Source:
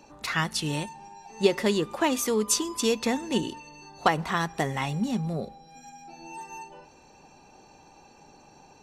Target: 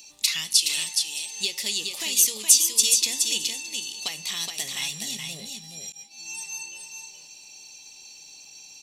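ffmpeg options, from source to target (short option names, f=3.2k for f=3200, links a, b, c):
-filter_complex "[0:a]highshelf=f=2.9k:g=4,acompressor=threshold=-28dB:ratio=2.5,asettb=1/sr,asplit=3[a][b][c];[a]atrim=end=0.594[d];[b]atrim=start=0.59:end=1.36,asetpts=PTS-STARTPTS,afade=t=in:d=0.004:c=qsin,afade=t=out:st=0.766:d=0.004:c=qsin,highpass=390[e];[c]atrim=start=1.356[f];[d][e]acrossfade=d=0.004:c1=hsin:c2=qsin[g];[g][f]acrossfade=d=0.004:c1=qsin:c2=hsin,aecho=1:1:420:0.562,flanger=delay=9.8:depth=1.5:regen=-82:speed=0.55:shape=triangular,aecho=1:1:619|1238|1857:0.1|0.036|0.013,aexciter=amount=13.7:drive=6.8:freq=2.3k,asettb=1/sr,asplit=3[h][i][j];[h]atrim=end=5.924[k];[i]atrim=start=5.92:end=6.35,asetpts=PTS-STARTPTS,afade=t=in:d=0.004:c=qsin,afade=t=out:st=0.426:d=0.004:c=qsin,agate=range=-33dB:threshold=-26dB:ratio=3:detection=peak[l];[j]atrim=start=6.346[m];[k][l]acrossfade=d=0.004:c1=hsin:c2=qsin[n];[n][m]acrossfade=d=0.004:c1=qsin:c2=hsin,volume=-9.5dB"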